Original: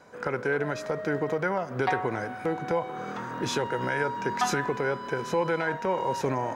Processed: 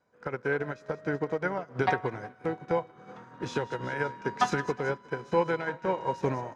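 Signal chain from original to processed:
low-pass filter 7,500 Hz 12 dB per octave
parametric band 81 Hz +4.5 dB 2.2 octaves
echo with a time of its own for lows and highs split 970 Hz, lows 362 ms, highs 187 ms, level −13 dB
expander for the loud parts 2.5 to 1, over −37 dBFS
level +2.5 dB

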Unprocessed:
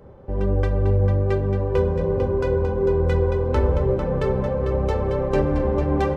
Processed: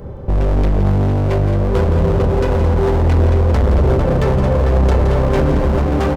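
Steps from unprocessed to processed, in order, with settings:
in parallel at −3 dB: brickwall limiter −18.5 dBFS, peak gain reduction 9.5 dB
on the sum: speech leveller within 4 dB 2 s
low-shelf EQ 230 Hz +9.5 dB
hard clipping −14.5 dBFS, distortion −7 dB
high-shelf EQ 3,400 Hz +6.5 dB
on a send: single-tap delay 169 ms −9.5 dB
on the sum: level +2.5 dB

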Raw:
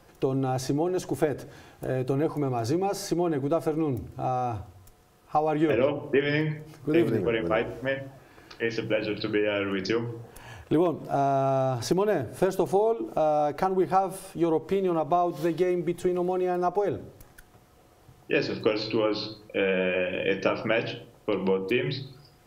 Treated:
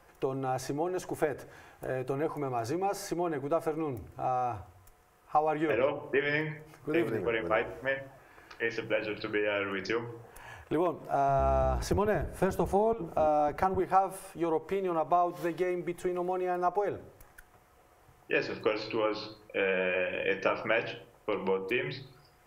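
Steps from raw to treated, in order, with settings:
0:11.28–0:13.80: sub-octave generator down 1 octave, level +3 dB
octave-band graphic EQ 125/250/1,000/2,000/4,000 Hz −5/−6/+3/+4/−6 dB
level −3.5 dB

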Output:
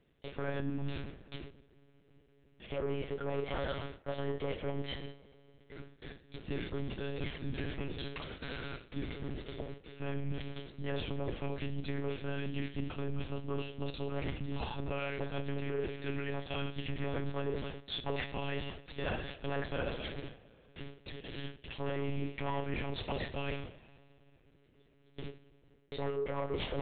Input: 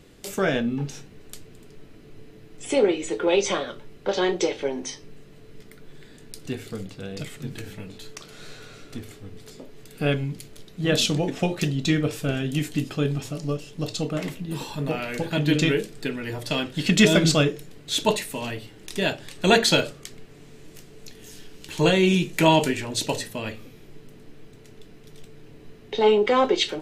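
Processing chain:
tube saturation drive 20 dB, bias 0.35
on a send: feedback echo with a high-pass in the loop 271 ms, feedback 25%, high-pass 430 Hz, level −21 dB
on the sum: noise gate with hold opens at −35 dBFS
treble cut that deepens with the level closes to 1,900 Hz, closed at −22 dBFS
coupled-rooms reverb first 0.52 s, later 2.2 s, from −18 dB, DRR 9.5 dB
reversed playback
downward compressor 12 to 1, threshold −36 dBFS, peak gain reduction 16.5 dB
reversed playback
one-pitch LPC vocoder at 8 kHz 140 Hz
level +3 dB

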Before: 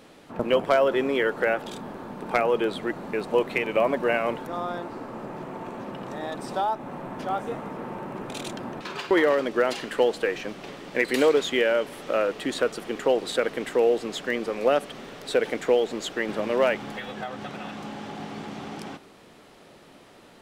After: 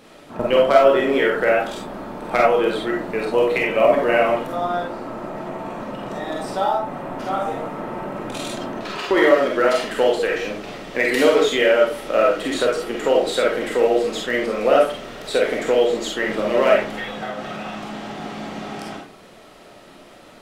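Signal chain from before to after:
comb and all-pass reverb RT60 0.4 s, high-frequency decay 0.55×, pre-delay 5 ms, DRR −2.5 dB
level +2 dB

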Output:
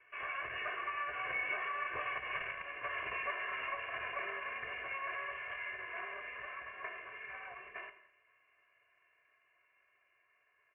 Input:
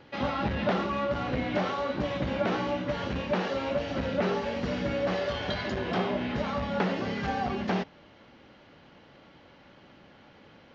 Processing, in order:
lower of the sound and its delayed copy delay 2.8 ms
source passing by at 0:02.46, 8 m/s, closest 1.9 metres
on a send: single-tap delay 208 ms −23.5 dB
on the sum: wrap-around overflow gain 25.5 dB
spectral tilt +4 dB per octave
bad sample-rate conversion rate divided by 3×, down none, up hold
comb filter 1.8 ms, depth 84%
downward compressor 6 to 1, threshold −45 dBFS, peak gain reduction 27 dB
hard clipping −34 dBFS, distortion −21 dB
Butterworth low-pass 2,700 Hz 96 dB per octave
parametric band 2,000 Hz +10.5 dB 2.1 octaves
reverb whose tail is shaped and stops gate 250 ms falling, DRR 9 dB
level +3 dB

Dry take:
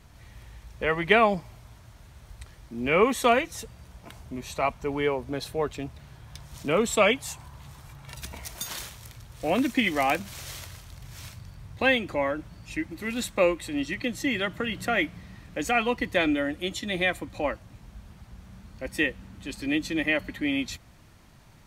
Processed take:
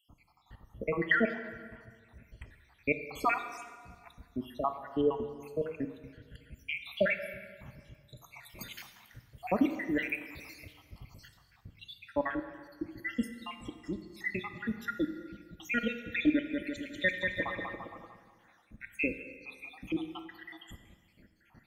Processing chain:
time-frequency cells dropped at random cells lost 80%
octave-band graphic EQ 250/2,000/8,000 Hz +7/+5/−11 dB
0:16.31–0:18.65: bouncing-ball delay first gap 190 ms, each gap 0.8×, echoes 5
dense smooth reverb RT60 1.7 s, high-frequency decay 0.85×, DRR 8 dB
level −4 dB

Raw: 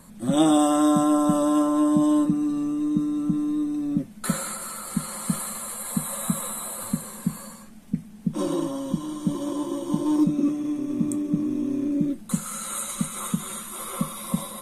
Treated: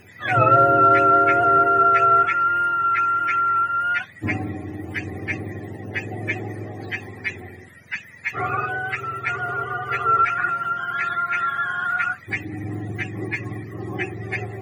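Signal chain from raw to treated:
frequency axis turned over on the octave scale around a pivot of 640 Hz
harmonic generator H 6 −45 dB, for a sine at −9.5 dBFS
level +5.5 dB

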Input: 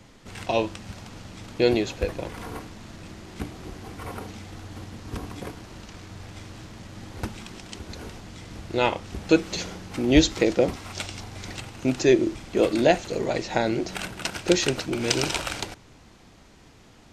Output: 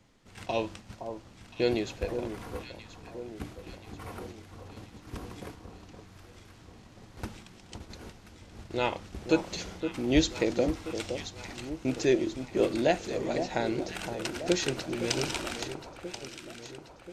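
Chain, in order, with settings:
noise gate −38 dBFS, range −6 dB
delay that swaps between a low-pass and a high-pass 516 ms, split 1,200 Hz, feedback 70%, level −8 dB
level −6.5 dB

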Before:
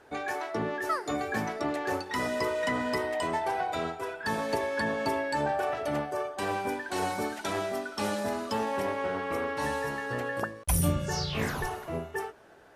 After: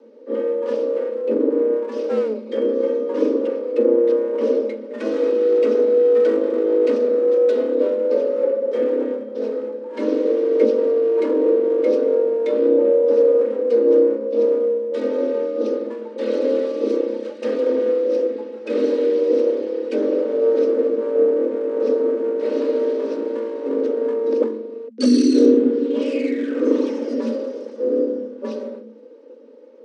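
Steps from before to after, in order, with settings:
lower of the sound and its delayed copy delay 1.3 ms
wrong playback speed 78 rpm record played at 33 rpm
low shelf with overshoot 370 Hz +13 dB, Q 3
frequency shifter +220 Hz
level −1 dB

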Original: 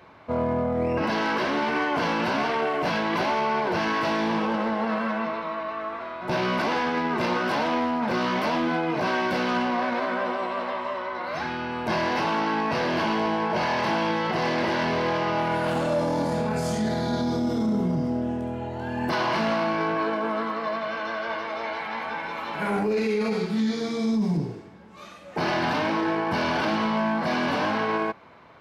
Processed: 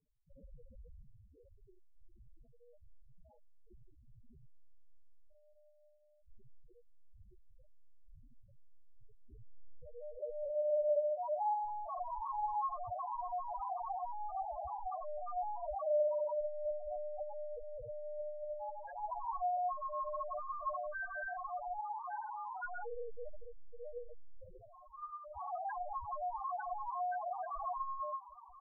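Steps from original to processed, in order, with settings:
low shelf with overshoot 360 Hz −13.5 dB, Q 1.5
reversed playback
upward compression, threshold −34 dBFS
reversed playback
low-pass filter sweep 150 Hz → 1,300 Hz, 0:08.92–0:11.90
one-pitch LPC vocoder at 8 kHz 120 Hz
soft clipping −19.5 dBFS, distortion −9 dB
on a send: ambience of single reflections 43 ms −8.5 dB, 70 ms −9.5 dB
on the sum: spectral peaks only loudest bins 2
level −7 dB

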